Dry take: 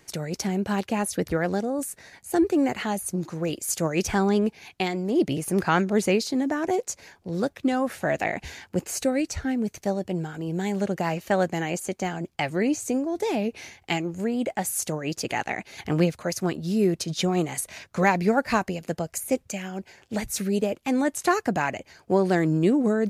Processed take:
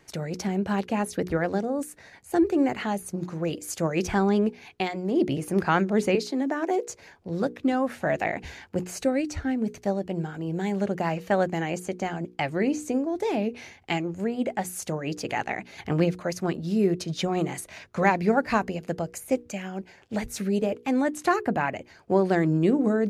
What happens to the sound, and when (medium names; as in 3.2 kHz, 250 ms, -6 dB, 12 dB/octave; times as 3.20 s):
6.15–6.82 s: steep high-pass 250 Hz
21.36–21.76 s: peaking EQ 6.1 kHz -10.5 dB 0.82 oct
whole clip: treble shelf 4.7 kHz -9.5 dB; hum notches 60/120/180/240/300/360/420/480 Hz